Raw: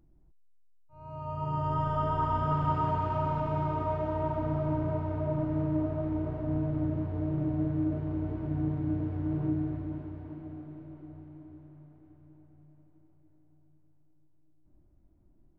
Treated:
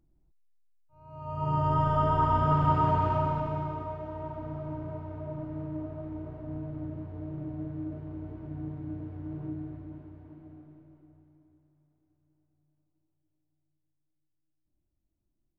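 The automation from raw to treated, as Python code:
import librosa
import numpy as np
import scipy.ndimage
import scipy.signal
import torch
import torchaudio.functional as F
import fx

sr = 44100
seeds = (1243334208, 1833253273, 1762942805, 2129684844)

y = fx.gain(x, sr, db=fx.line((1.06, -6.0), (1.49, 4.0), (3.08, 4.0), (3.97, -7.0), (10.59, -7.0), (11.77, -17.0)))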